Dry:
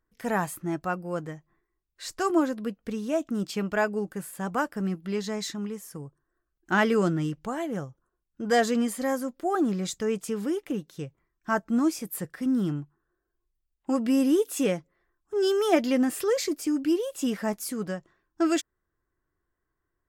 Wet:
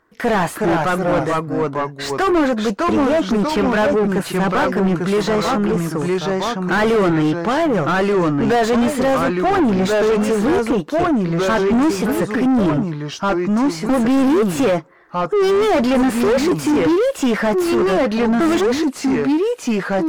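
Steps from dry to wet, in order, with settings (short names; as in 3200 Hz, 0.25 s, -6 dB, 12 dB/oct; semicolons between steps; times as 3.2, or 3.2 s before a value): echoes that change speed 0.336 s, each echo -2 st, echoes 2, each echo -6 dB; overdrive pedal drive 34 dB, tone 1200 Hz, clips at -7 dBFS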